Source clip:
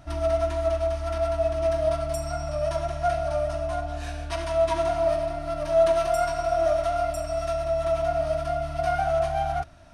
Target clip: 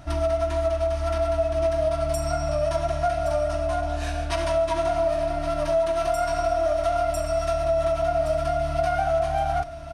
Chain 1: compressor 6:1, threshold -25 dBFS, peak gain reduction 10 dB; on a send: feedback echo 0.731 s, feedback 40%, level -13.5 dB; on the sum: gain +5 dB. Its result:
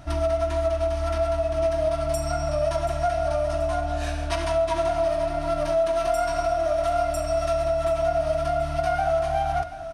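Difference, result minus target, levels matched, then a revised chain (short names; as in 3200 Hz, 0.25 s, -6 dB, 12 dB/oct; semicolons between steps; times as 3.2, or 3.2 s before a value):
echo 0.388 s early
compressor 6:1, threshold -25 dBFS, peak gain reduction 10 dB; on a send: feedback echo 1.119 s, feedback 40%, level -13.5 dB; on the sum: gain +5 dB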